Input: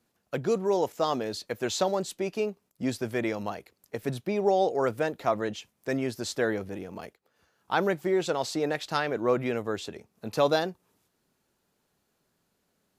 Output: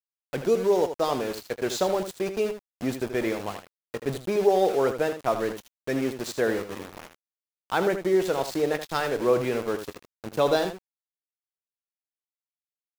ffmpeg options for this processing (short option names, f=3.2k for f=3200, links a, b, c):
-af "adynamicequalizer=threshold=0.0158:dfrequency=420:dqfactor=2.1:tfrequency=420:tqfactor=2.1:attack=5:release=100:ratio=0.375:range=2:mode=boostabove:tftype=bell,aeval=exprs='val(0)*gte(abs(val(0)),0.0224)':c=same,aecho=1:1:22|79:0.168|0.335"